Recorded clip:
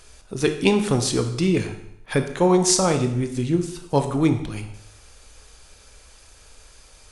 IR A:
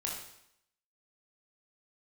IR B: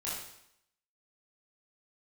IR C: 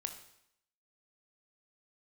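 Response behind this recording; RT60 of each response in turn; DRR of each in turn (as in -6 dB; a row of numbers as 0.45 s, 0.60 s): C; 0.75 s, 0.75 s, 0.75 s; -2.5 dB, -8.5 dB, 6.0 dB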